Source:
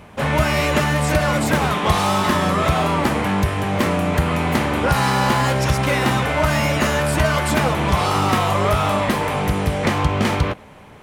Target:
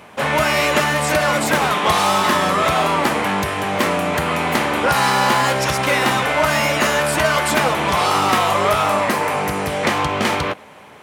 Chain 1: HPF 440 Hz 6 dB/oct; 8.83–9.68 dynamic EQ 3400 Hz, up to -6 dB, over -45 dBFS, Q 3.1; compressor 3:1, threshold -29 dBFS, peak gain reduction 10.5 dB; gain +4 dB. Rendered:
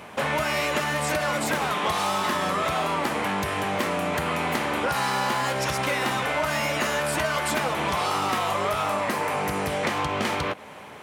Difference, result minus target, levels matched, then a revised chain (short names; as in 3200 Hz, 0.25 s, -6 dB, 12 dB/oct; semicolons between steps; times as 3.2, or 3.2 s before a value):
compressor: peak gain reduction +10.5 dB
HPF 440 Hz 6 dB/oct; 8.83–9.68 dynamic EQ 3400 Hz, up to -6 dB, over -45 dBFS, Q 3.1; gain +4 dB